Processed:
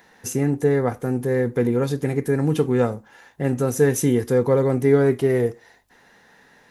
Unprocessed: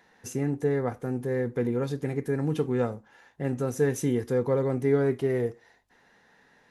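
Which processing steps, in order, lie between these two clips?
high-shelf EQ 9,100 Hz +9 dB
level +7 dB

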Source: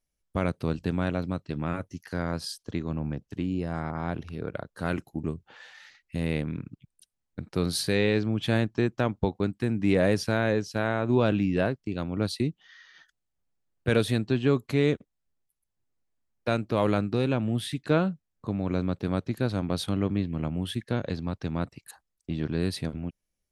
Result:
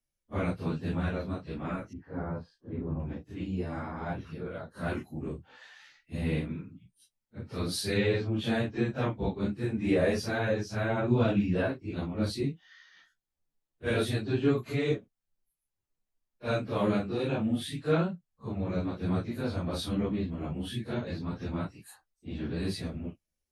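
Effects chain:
random phases in long frames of 100 ms
flanger 0.27 Hz, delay 8.5 ms, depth 7.3 ms, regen −28%
0:01.93–0:03.00: low-pass filter 1,100 Hz 12 dB per octave

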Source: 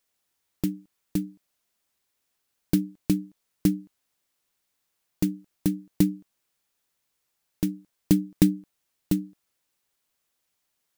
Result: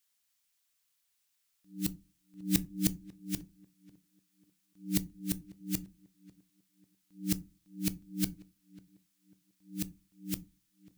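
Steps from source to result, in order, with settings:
played backwards from end to start
guitar amp tone stack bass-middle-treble 5-5-5
tape delay 543 ms, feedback 37%, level −19 dB, low-pass 1,100 Hz
on a send at −13.5 dB: convolution reverb RT60 0.25 s, pre-delay 4 ms
on the sum: level +6.5 dB

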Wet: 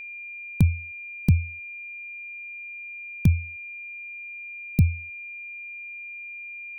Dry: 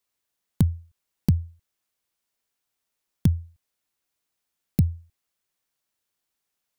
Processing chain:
steady tone 2,400 Hz −33 dBFS
low-shelf EQ 110 Hz +9 dB
level −2.5 dB

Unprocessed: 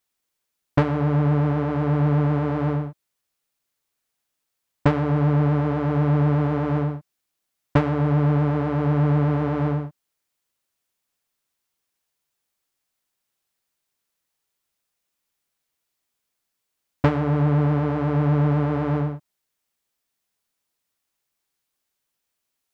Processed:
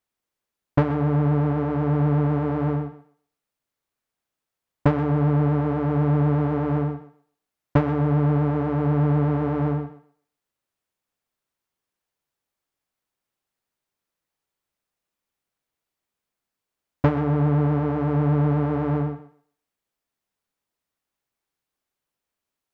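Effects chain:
high-shelf EQ 2,300 Hz −9 dB
on a send: feedback echo with a high-pass in the loop 127 ms, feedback 21%, high-pass 230 Hz, level −12.5 dB

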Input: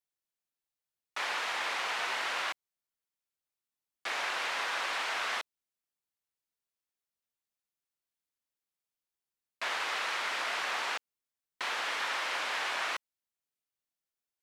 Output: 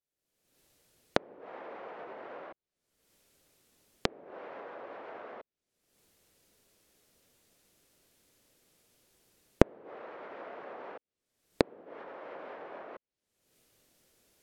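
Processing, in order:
camcorder AGC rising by 50 dB per second
treble cut that deepens with the level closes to 360 Hz, closed at −27.5 dBFS
low shelf with overshoot 680 Hz +7.5 dB, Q 1.5
level −6.5 dB

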